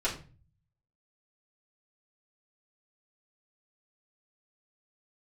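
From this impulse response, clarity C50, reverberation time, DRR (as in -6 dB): 9.5 dB, 0.35 s, -7.5 dB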